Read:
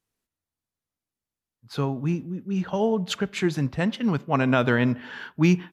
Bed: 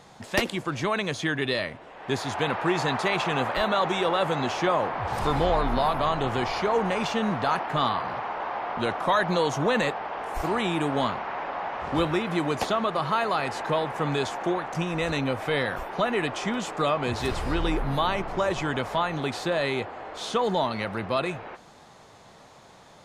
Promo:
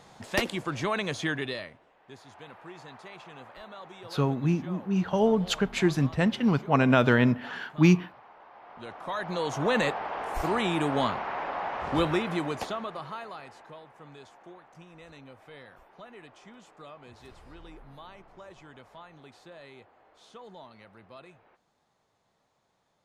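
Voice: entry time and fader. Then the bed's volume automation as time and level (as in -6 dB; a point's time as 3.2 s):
2.40 s, 0.0 dB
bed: 1.31 s -2.5 dB
2.06 s -21 dB
8.5 s -21 dB
9.75 s -1 dB
12.17 s -1 dB
13.82 s -22.5 dB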